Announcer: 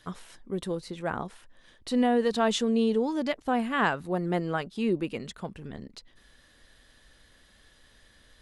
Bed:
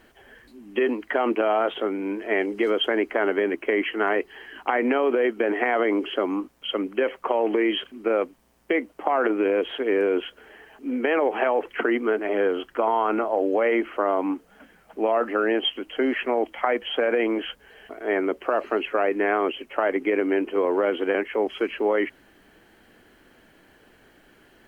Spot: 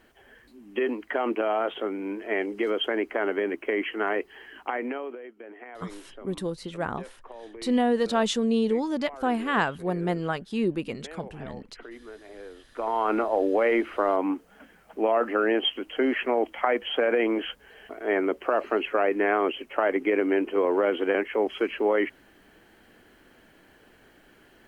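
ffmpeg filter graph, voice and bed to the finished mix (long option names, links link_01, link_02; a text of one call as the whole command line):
ffmpeg -i stem1.wav -i stem2.wav -filter_complex "[0:a]adelay=5750,volume=1dB[link_01];[1:a]volume=16dB,afade=type=out:start_time=4.49:duration=0.72:silence=0.141254,afade=type=in:start_time=12.64:duration=0.47:silence=0.1[link_02];[link_01][link_02]amix=inputs=2:normalize=0" out.wav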